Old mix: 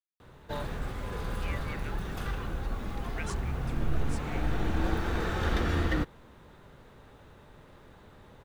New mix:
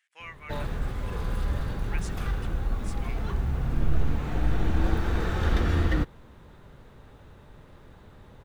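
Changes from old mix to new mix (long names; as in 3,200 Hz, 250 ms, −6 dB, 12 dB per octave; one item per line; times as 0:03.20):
speech: entry −1.25 s
master: add low-shelf EQ 170 Hz +6.5 dB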